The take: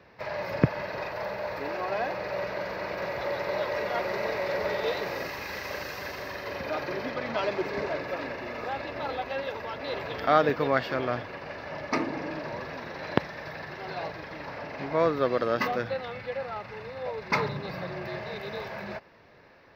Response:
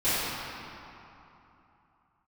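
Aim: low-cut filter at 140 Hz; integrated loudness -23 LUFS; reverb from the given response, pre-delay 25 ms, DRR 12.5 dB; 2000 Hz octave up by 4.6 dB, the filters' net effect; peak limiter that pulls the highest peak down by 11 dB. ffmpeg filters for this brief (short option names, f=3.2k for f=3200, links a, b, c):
-filter_complex "[0:a]highpass=140,equalizer=f=2k:t=o:g=5.5,alimiter=limit=-15.5dB:level=0:latency=1,asplit=2[a][b];[1:a]atrim=start_sample=2205,adelay=25[c];[b][c]afir=irnorm=-1:irlink=0,volume=-27.5dB[d];[a][d]amix=inputs=2:normalize=0,volume=7.5dB"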